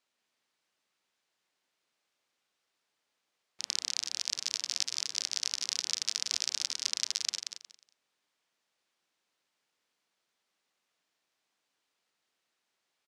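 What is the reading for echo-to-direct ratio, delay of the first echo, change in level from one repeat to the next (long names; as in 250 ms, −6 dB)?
−6.0 dB, 180 ms, −13.0 dB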